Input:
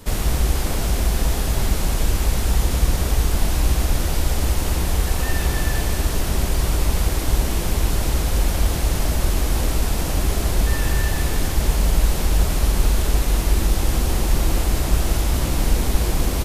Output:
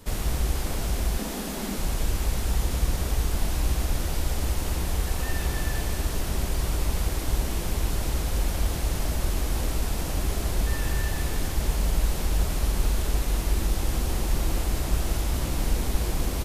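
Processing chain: 1.18–1.78 resonant low shelf 150 Hz -11.5 dB, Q 3; gain -6.5 dB

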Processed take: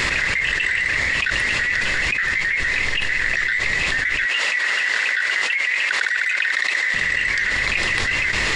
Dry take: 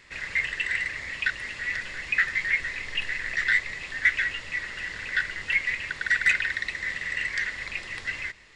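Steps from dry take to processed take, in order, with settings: 4.26–6.94 HPF 550 Hz 12 dB/oct; fast leveller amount 100%; gain -4 dB

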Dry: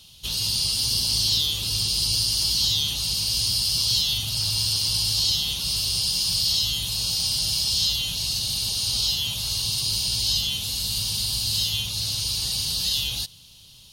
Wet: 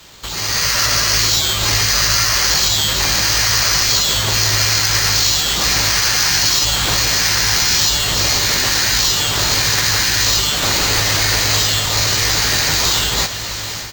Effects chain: high shelf 9100 Hz +9 dB; compressor 2.5:1, threshold -34 dBFS, peak gain reduction 11.5 dB; tone controls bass +3 dB, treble +3 dB; doubler 19 ms -5.5 dB; careless resampling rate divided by 4×, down none, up hold; diffused feedback echo 1.539 s, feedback 66%, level -11.5 dB; AGC gain up to 11.5 dB; gain +2 dB

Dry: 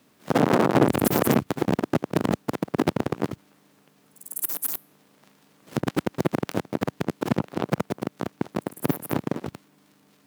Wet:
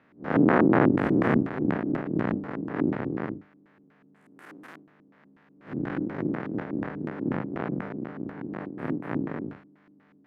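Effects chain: time blur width 0.12 s; LFO low-pass square 4.1 Hz 310–1800 Hz

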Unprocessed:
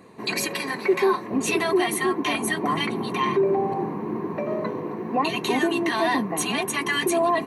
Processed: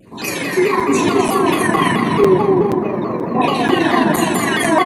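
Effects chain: random spectral dropouts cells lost 34%; low shelf 95 Hz +12 dB; on a send: feedback echo 0.406 s, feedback 31%, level -7.5 dB; on the sum: plate-style reverb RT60 2.8 s, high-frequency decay 0.35×, DRR -8 dB; granular stretch 0.65×, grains 83 ms; crackling interface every 0.48 s, samples 256, zero, from 0.8; shaped vibrato saw down 4.6 Hz, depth 160 cents; gain +1.5 dB

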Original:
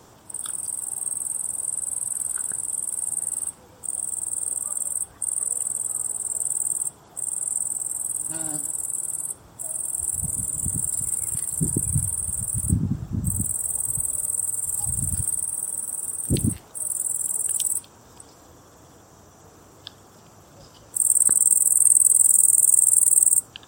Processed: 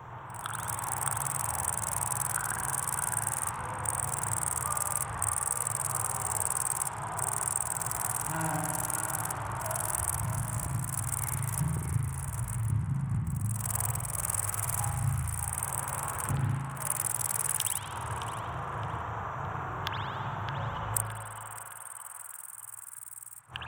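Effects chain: Wiener smoothing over 9 samples; flipped gate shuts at -8 dBFS, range -33 dB; graphic EQ 125/250/500/1000/2000/4000/8000 Hz +11/-11/-3/+9/+4/-6/-12 dB; compressor, threshold -40 dBFS, peak gain reduction 26.5 dB; high shelf 2100 Hz +10 dB; narrowing echo 0.616 s, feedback 54%, band-pass 1600 Hz, level -5 dB; AGC gain up to 6.5 dB; reverb RT60 1.5 s, pre-delay 50 ms, DRR -1 dB; Doppler distortion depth 0.24 ms

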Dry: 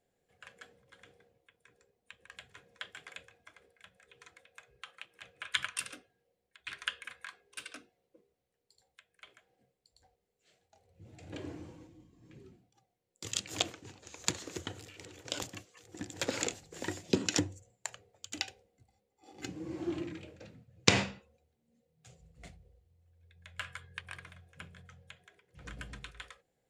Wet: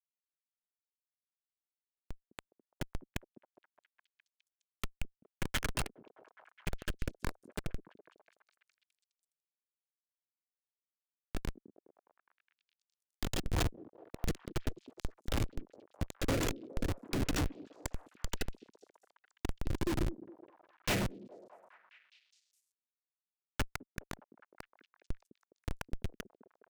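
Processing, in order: Schmitt trigger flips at -34 dBFS; rotary speaker horn 1.2 Hz, later 6.3 Hz, at 13.22; delay with a stepping band-pass 0.207 s, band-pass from 300 Hz, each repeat 0.7 oct, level -12 dB; gain +13.5 dB

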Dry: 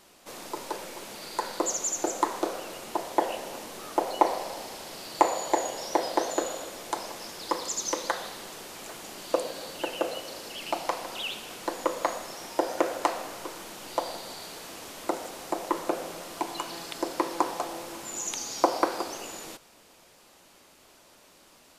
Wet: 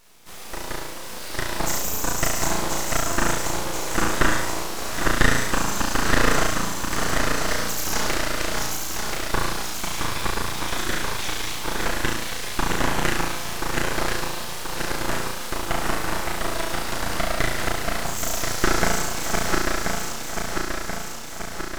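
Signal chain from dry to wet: regenerating reverse delay 0.516 s, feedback 77%, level -2.5 dB; flutter echo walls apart 6 m, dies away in 0.93 s; full-wave rectifier; gain +2.5 dB

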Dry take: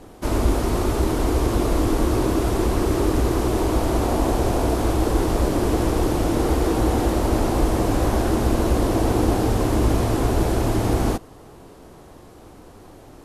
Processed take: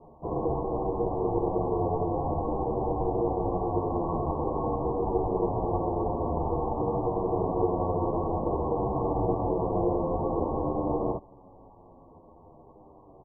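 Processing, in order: rippled Chebyshev low-pass 720 Hz, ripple 3 dB; ring modulator 410 Hz; endless flanger 9.4 ms -0.49 Hz

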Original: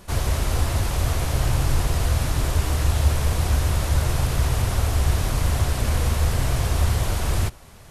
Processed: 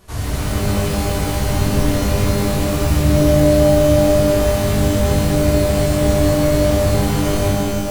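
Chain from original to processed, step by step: shimmer reverb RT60 1.7 s, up +12 st, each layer -2 dB, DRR -4.5 dB; gain -5 dB

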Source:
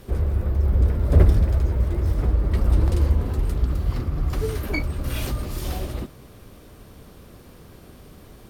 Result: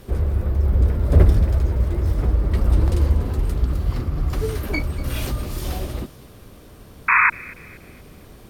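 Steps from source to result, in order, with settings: painted sound noise, 7.08–7.3, 910–2600 Hz -16 dBFS; thin delay 0.239 s, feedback 41%, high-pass 2800 Hz, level -14 dB; gain +1.5 dB

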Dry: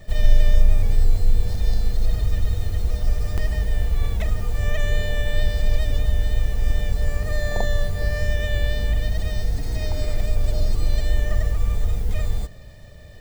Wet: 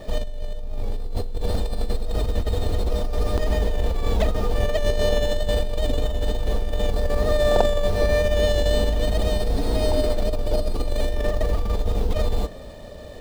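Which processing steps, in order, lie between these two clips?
negative-ratio compressor -20 dBFS, ratio -1; graphic EQ 125/250/500/1000/2000/4000 Hz -8/+9/+8/+8/-5/+8 dB; running maximum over 5 samples

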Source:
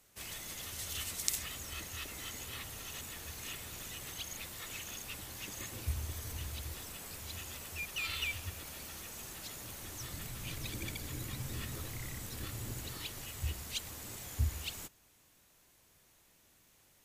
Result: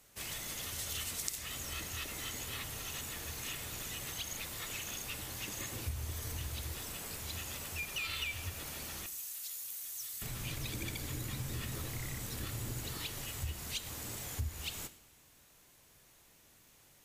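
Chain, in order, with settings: 9.06–10.22 pre-emphasis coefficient 0.97; two-slope reverb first 0.68 s, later 2.6 s, from -24 dB, DRR 12 dB; compressor 3:1, threshold -39 dBFS, peak gain reduction 10.5 dB; gain +3 dB

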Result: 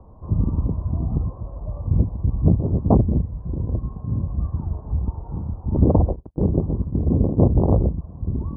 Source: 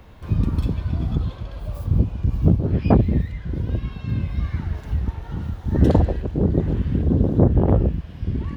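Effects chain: Chebyshev low-pass 1100 Hz, order 5; 5.81–7.97 gate -21 dBFS, range -48 dB

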